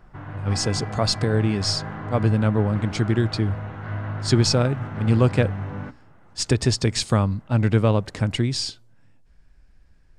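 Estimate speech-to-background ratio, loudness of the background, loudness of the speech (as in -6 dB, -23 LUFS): 9.5 dB, -32.0 LUFS, -22.5 LUFS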